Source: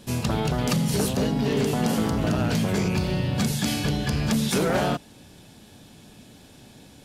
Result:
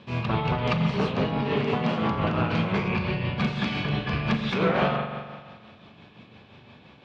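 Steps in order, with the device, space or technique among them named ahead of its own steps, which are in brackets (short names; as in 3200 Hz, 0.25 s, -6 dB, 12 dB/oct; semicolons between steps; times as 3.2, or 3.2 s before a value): combo amplifier with spring reverb and tremolo (spring tank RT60 1.7 s, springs 42 ms, chirp 20 ms, DRR 4 dB; tremolo 5.8 Hz, depth 41%; speaker cabinet 87–3700 Hz, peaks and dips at 280 Hz -6 dB, 1100 Hz +8 dB, 2400 Hz +6 dB)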